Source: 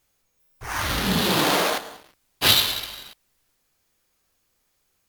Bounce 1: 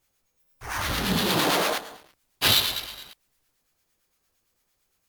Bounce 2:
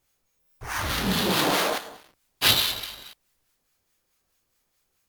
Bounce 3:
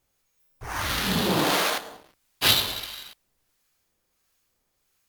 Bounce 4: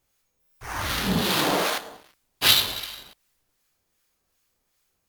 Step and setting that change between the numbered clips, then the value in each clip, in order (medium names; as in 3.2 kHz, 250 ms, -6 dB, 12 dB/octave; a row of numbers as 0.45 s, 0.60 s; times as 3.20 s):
harmonic tremolo, rate: 8.8 Hz, 4.7 Hz, 1.5 Hz, 2.6 Hz